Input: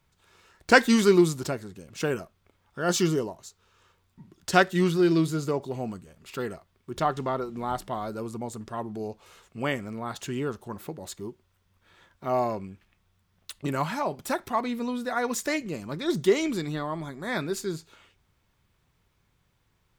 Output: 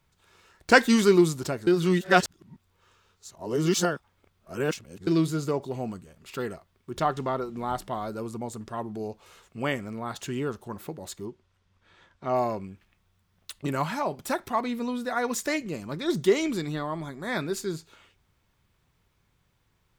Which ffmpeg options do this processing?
-filter_complex "[0:a]asettb=1/sr,asplit=3[s0][s1][s2];[s0]atrim=end=11.254[s3];[s1]atrim=start=11.25:end=12.36,asetpts=PTS-STARTPTS,afade=t=in:d=0.004:c=qsin,afade=t=out:st=1.106:d=0.004:c=qsin,lowpass=6800[s4];[s2]atrim=start=12.356[s5];[s3][s4]acrossfade=d=0.004:c1=hsin:c2=qsin[s6];[s6][s5]acrossfade=d=0.004:c1=qsin:c2=hsin,asplit=3[s7][s8][s9];[s7]atrim=end=1.672[s10];[s8]atrim=start=1.668:end=5.072,asetpts=PTS-STARTPTS,areverse[s11];[s9]atrim=start=5.068[s12];[s10][s11]acrossfade=d=0.004:c1=hsin:c2=hsin[s13];[s13][s12]acrossfade=d=0.004:c1=hsin:c2=hsin"

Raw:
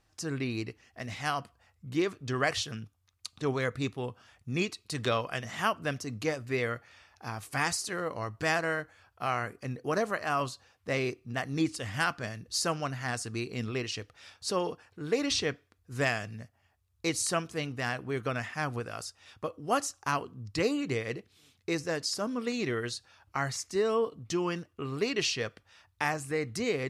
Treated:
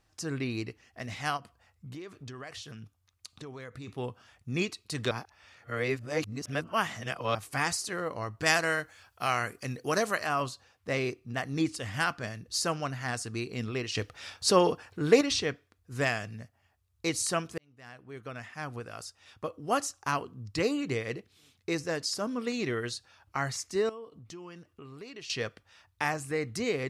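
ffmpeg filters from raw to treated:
-filter_complex "[0:a]asplit=3[s0][s1][s2];[s0]afade=t=out:st=1.36:d=0.02[s3];[s1]acompressor=threshold=0.01:ratio=6:attack=3.2:release=140:knee=1:detection=peak,afade=t=in:st=1.36:d=0.02,afade=t=out:st=3.87:d=0.02[s4];[s2]afade=t=in:st=3.87:d=0.02[s5];[s3][s4][s5]amix=inputs=3:normalize=0,asettb=1/sr,asplit=3[s6][s7][s8];[s6]atrim=end=8.464[s9];[s7]atrim=start=8.46:end=10.27,asetpts=PTS-STARTPTS,afade=t=in:d=0.004:c=qsin,afade=t=out:st=1.806:d=0.004:c=qsin,highshelf=f=2500:g=11[s10];[s8]atrim=start=10.266[s11];[s9][s10]acrossfade=d=0.004:c1=hsin:c2=qsin[s12];[s12][s11]acrossfade=d=0.004:c1=qsin:c2=hsin,asettb=1/sr,asplit=3[s13][s14][s15];[s13]atrim=end=23.894[s16];[s14]atrim=start=23.89:end=25.3,asetpts=PTS-STARTPTS,afade=t=in:d=0.004:c=qsin,afade=t=out:st=1.406:d=0.004:c=qsin,acompressor=threshold=0.00355:ratio=2.5:attack=3.2:release=140:knee=1:detection=peak[s17];[s15]atrim=start=25.296[s18];[s16][s17]acrossfade=d=0.004:c1=hsin:c2=qsin[s19];[s19][s18]acrossfade=d=0.004:c1=qsin:c2=hsin,asplit=6[s20][s21][s22][s23][s24][s25];[s20]atrim=end=5.112[s26];[s21]atrim=start=5.108:end=7.352,asetpts=PTS-STARTPTS,areverse[s27];[s22]atrim=start=7.348:end=13.952[s28];[s23]atrim=start=13.948:end=15.212,asetpts=PTS-STARTPTS,volume=2.51[s29];[s24]atrim=start=15.208:end=17.58,asetpts=PTS-STARTPTS,afade=t=out:st=2.368:d=0.004:c=hsin[s30];[s25]atrim=start=17.58,asetpts=PTS-STARTPTS,afade=t=in:d=2[s31];[s26][s27]acrossfade=d=0.004:c1=hsin:c2=hsin[s32];[s32][s28]acrossfade=d=0.004:c1=hsin:c2=hsin[s33];[s33][s29]acrossfade=d=0.004:c1=hsin:c2=hsin[s34];[s30][s31]concat=n=2:v=0:a=1[s35];[s34][s35]acrossfade=d=0.004:c1=hsin:c2=hsin"

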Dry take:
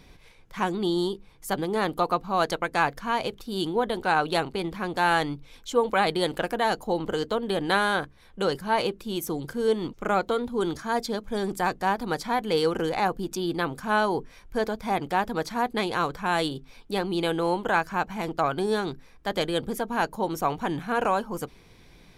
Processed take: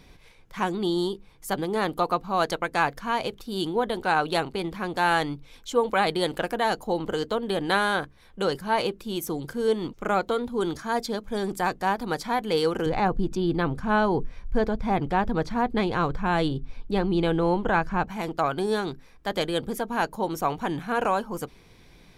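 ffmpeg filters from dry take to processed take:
-filter_complex "[0:a]asettb=1/sr,asplit=3[s0][s1][s2];[s0]atrim=end=12.864[s3];[s1]atrim=start=12.86:end=18.08,asetpts=PTS-STARTPTS,afade=t=in:d=0.004:c=qsin,afade=t=out:st=5.216:d=0.004:c=qsin,aemphasis=mode=reproduction:type=bsi[s4];[s2]atrim=start=18.076[s5];[s3][s4]acrossfade=d=0.004:c1=hsin:c2=qsin[s6];[s6][s5]acrossfade=d=0.004:c1=qsin:c2=hsin"

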